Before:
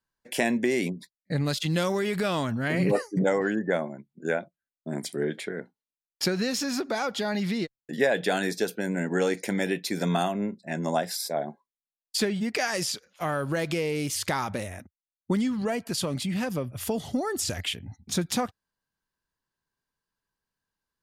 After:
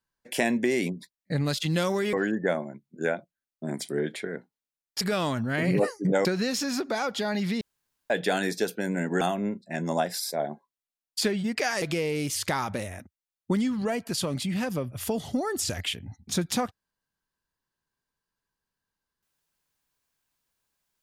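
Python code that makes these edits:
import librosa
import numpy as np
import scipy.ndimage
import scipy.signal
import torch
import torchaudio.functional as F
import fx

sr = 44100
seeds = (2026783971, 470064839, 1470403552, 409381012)

y = fx.edit(x, sr, fx.move(start_s=2.13, length_s=1.24, to_s=6.25),
    fx.room_tone_fill(start_s=7.61, length_s=0.49),
    fx.cut(start_s=9.21, length_s=0.97),
    fx.cut(start_s=12.79, length_s=0.83), tone=tone)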